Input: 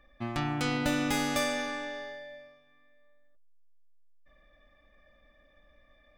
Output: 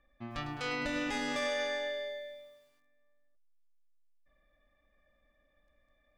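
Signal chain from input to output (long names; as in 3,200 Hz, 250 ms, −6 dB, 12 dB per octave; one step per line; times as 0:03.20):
0:00.54–0:01.15: mains-hum notches 50/100/150/200/250/300 Hz
noise reduction from a noise print of the clip's start 10 dB
brickwall limiter −25.5 dBFS, peak gain reduction 8 dB
high-frequency loss of the air 81 metres
feedback echo at a low word length 104 ms, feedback 55%, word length 11 bits, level −9.5 dB
level +1 dB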